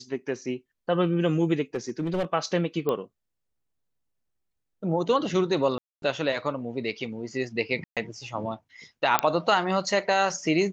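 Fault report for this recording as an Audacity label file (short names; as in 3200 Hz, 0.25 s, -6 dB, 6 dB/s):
1.750000	2.250000	clipped -22.5 dBFS
2.890000	2.890000	pop -15 dBFS
5.780000	6.020000	gap 0.242 s
7.840000	7.970000	gap 0.127 s
9.190000	9.190000	pop -4 dBFS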